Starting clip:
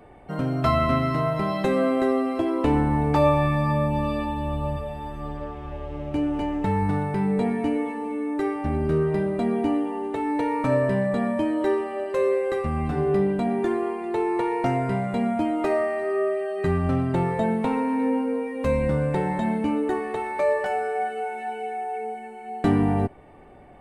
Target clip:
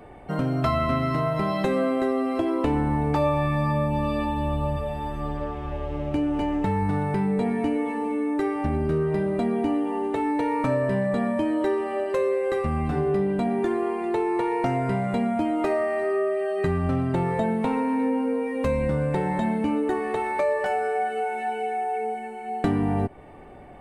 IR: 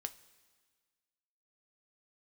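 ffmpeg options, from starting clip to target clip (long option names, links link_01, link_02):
-af "acompressor=threshold=-26dB:ratio=2.5,volume=3.5dB"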